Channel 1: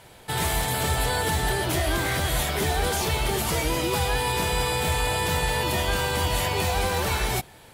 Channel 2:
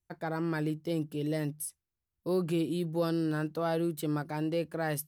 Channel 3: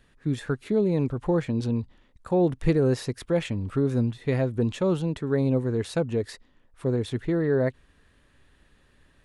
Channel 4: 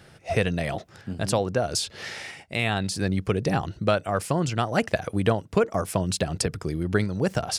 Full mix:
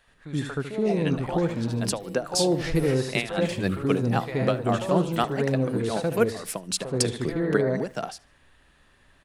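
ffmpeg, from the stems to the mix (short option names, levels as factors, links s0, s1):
-filter_complex "[1:a]equalizer=f=2000:w=0.3:g=-12,adelay=1150,volume=0.944,asplit=2[s0][s1];[s1]volume=0.316[s2];[2:a]volume=1.19,asplit=2[s3][s4];[s4]volume=0.668[s5];[3:a]highpass=f=170:w=0.5412,highpass=f=170:w=1.3066,aeval=exprs='val(0)*pow(10,-18*(0.5-0.5*cos(2*PI*3.9*n/s))/20)':c=same,adelay=600,volume=1.33,asplit=2[s6][s7];[s7]volume=0.0631[s8];[s0][s3]amix=inputs=2:normalize=0,lowshelf=f=460:t=q:w=1.5:g=-12.5,acompressor=threshold=0.0141:ratio=2,volume=1[s9];[s2][s5][s8]amix=inputs=3:normalize=0,aecho=0:1:75|150|225|300:1|0.31|0.0961|0.0298[s10];[s6][s9][s10]amix=inputs=3:normalize=0"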